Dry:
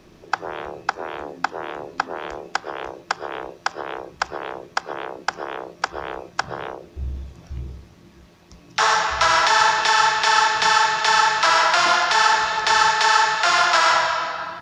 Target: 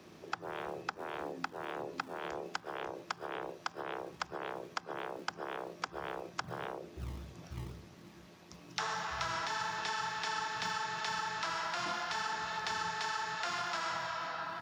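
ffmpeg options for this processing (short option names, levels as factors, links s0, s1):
-filter_complex "[0:a]highpass=120,acrossover=split=250[s0][s1];[s0]acrusher=samples=25:mix=1:aa=0.000001:lfo=1:lforange=40:lforate=2[s2];[s1]acompressor=threshold=0.0251:ratio=5[s3];[s2][s3]amix=inputs=2:normalize=0,volume=0.596"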